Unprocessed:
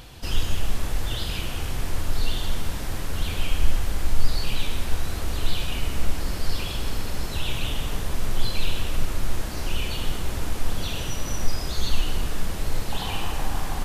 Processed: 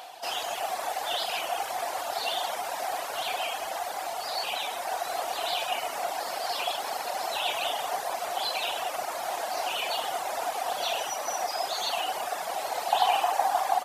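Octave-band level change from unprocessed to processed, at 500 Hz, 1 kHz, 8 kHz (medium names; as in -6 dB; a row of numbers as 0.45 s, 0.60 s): +6.0 dB, +11.0 dB, 0.0 dB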